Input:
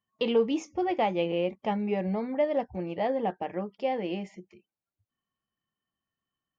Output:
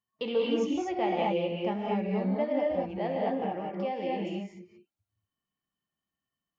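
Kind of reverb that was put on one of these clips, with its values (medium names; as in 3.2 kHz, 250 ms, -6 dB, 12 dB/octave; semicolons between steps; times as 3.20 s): gated-style reverb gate 260 ms rising, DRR -2 dB; trim -5.5 dB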